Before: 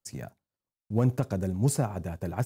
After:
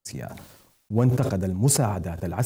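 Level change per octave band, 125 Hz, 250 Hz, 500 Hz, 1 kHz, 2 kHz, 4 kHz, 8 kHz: +4.5, +4.0, +4.5, +5.5, +5.0, +10.5, +10.5 dB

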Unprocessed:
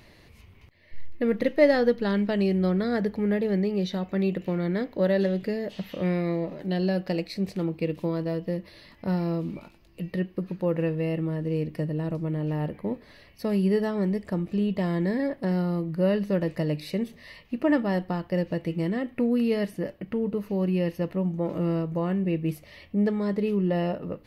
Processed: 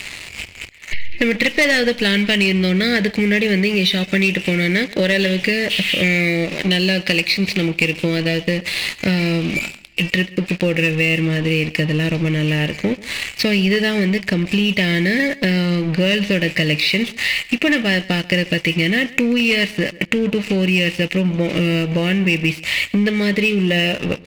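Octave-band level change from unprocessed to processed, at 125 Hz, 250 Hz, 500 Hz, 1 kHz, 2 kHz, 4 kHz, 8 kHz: +8.5 dB, +7.5 dB, +5.5 dB, +4.0 dB, +21.0 dB, +24.0 dB, n/a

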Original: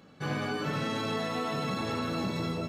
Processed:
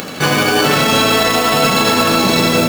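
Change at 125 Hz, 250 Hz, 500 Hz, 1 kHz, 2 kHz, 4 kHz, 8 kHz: +13.5, +16.5, +19.5, +20.0, +22.0, +24.0, +28.0 dB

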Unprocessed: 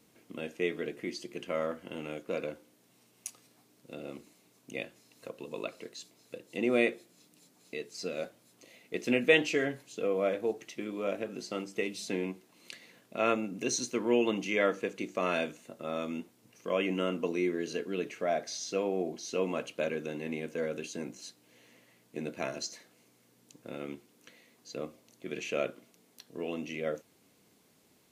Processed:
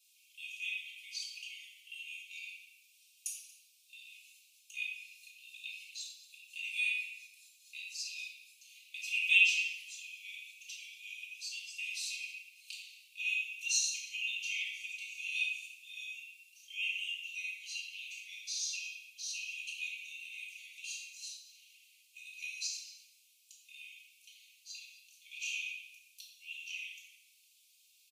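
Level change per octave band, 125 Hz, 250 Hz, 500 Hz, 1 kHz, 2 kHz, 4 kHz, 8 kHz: under -40 dB, under -40 dB, under -40 dB, under -40 dB, +2.0 dB, +3.5 dB, +3.0 dB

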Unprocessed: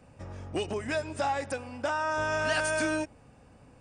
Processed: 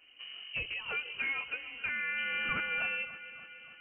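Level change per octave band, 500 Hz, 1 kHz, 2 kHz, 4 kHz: -19.5, -11.0, -0.5, 0.0 dB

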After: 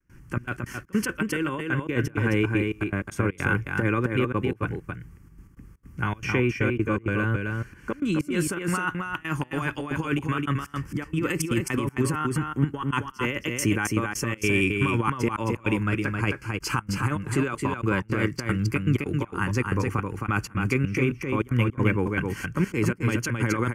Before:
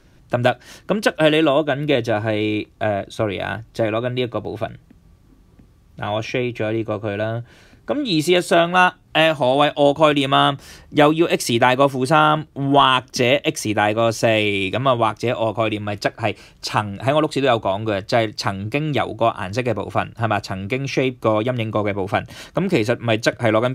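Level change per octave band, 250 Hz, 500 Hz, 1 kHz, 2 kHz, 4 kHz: -4.0, -12.0, -12.0, -5.0, -15.0 dB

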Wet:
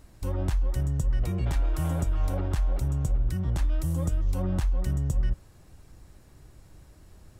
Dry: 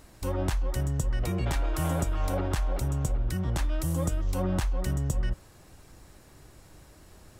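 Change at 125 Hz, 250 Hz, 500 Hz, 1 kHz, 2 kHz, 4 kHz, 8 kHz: +1.5, -1.0, -4.0, -5.0, -5.5, -5.5, -5.5 dB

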